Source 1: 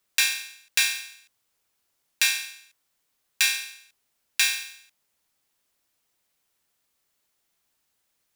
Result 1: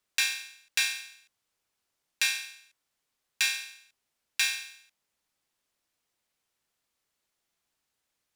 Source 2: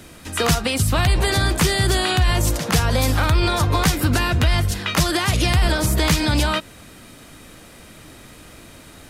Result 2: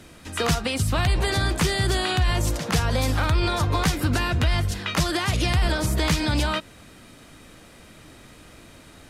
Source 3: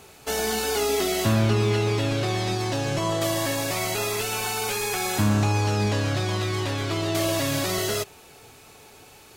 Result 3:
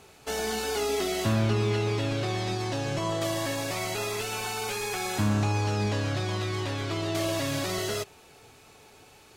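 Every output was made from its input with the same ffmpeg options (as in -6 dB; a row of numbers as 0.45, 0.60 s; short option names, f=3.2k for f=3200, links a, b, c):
-af "highshelf=f=12k:g=-10,volume=-4dB"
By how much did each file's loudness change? -5.0, -4.5, -4.5 LU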